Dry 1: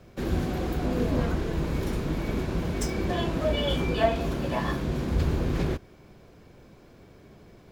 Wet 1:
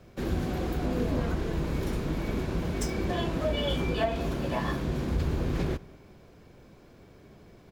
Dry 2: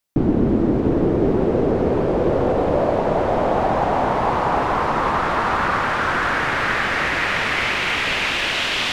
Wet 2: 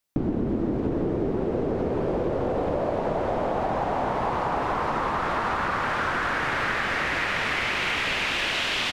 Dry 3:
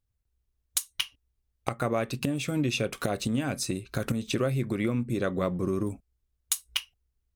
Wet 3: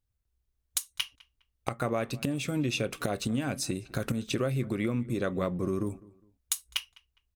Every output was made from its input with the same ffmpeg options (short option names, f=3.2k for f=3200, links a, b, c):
-filter_complex "[0:a]acompressor=threshold=-21dB:ratio=6,asplit=2[a][b];[b]adelay=205,lowpass=f=2.7k:p=1,volume=-22dB,asplit=2[c][d];[d]adelay=205,lowpass=f=2.7k:p=1,volume=0.33[e];[c][e]amix=inputs=2:normalize=0[f];[a][f]amix=inputs=2:normalize=0,volume=-1.5dB"